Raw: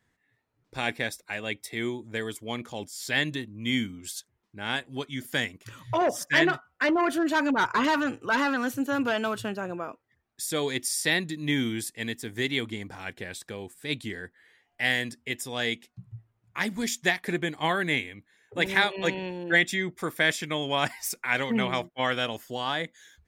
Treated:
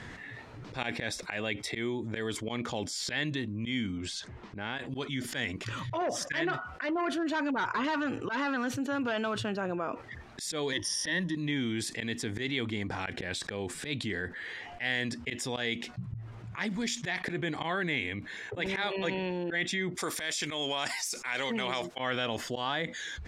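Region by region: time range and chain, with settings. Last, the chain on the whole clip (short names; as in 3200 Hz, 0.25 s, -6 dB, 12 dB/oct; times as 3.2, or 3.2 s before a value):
3.98–4.79 LPF 10000 Hz 24 dB/oct + high shelf 4300 Hz -9.5 dB + compressor 3:1, threshold -43 dBFS
10.72–11.35 G.711 law mismatch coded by A + ripple EQ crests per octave 1.2, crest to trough 16 dB
19.95–21.99 tone controls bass -9 dB, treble +14 dB + compressor 12:1, threshold -25 dBFS
whole clip: LPF 5300 Hz 12 dB/oct; auto swell 0.111 s; fast leveller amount 70%; gain -8.5 dB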